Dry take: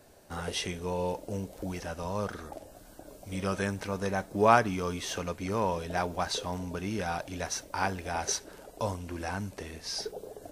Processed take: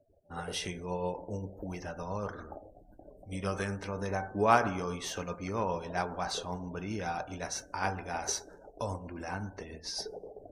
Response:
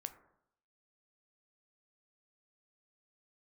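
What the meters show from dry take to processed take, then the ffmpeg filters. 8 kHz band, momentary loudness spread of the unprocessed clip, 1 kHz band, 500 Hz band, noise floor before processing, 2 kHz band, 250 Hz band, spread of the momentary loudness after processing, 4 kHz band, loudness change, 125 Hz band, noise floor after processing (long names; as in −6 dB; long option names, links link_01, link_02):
−2.5 dB, 10 LU, −2.5 dB, −3.0 dB, −53 dBFS, −2.5 dB, −3.5 dB, 9 LU, −3.0 dB, −3.0 dB, −2.5 dB, −57 dBFS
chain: -filter_complex "[0:a]lowpass=frequency=2400:poles=1,aemphasis=mode=production:type=75fm[link_01];[1:a]atrim=start_sample=2205[link_02];[link_01][link_02]afir=irnorm=-1:irlink=0,tremolo=f=7.5:d=0.31,afftdn=noise_reduction=35:noise_floor=-54,volume=2.5dB"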